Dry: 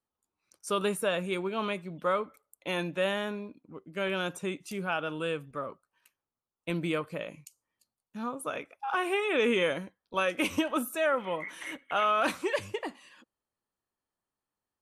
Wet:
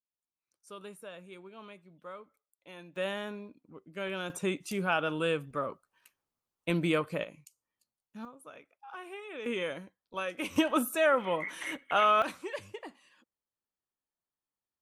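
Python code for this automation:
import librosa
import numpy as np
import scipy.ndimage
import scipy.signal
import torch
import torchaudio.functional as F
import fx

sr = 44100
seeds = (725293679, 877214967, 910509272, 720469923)

y = fx.gain(x, sr, db=fx.steps((0.0, -17.0), (2.96, -5.0), (4.3, 2.5), (7.24, -5.5), (8.25, -15.0), (9.46, -7.0), (10.56, 2.0), (12.22, -8.5)))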